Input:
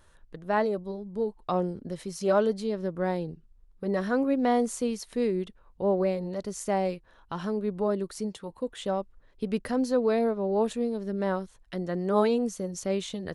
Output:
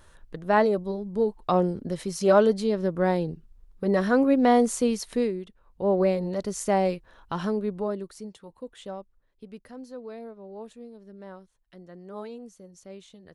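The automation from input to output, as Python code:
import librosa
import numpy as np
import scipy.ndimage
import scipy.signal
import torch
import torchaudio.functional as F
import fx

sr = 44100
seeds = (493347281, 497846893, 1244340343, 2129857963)

y = fx.gain(x, sr, db=fx.line((5.15, 5.0), (5.41, -6.0), (6.03, 4.0), (7.45, 4.0), (8.21, -7.0), (8.81, -7.0), (9.59, -15.0)))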